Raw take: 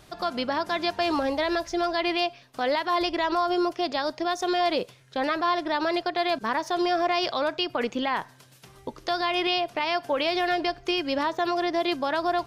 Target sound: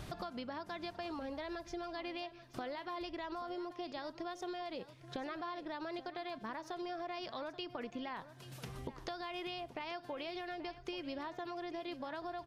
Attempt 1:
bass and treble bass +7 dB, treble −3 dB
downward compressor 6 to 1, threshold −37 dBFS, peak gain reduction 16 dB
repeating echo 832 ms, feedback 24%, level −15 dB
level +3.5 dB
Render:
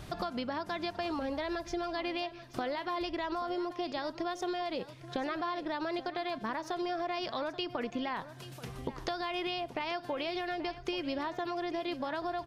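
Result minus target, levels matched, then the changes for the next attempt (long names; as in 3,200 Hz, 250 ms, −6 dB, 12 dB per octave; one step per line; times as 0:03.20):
downward compressor: peak gain reduction −7.5 dB
change: downward compressor 6 to 1, threshold −46 dBFS, peak gain reduction 23.5 dB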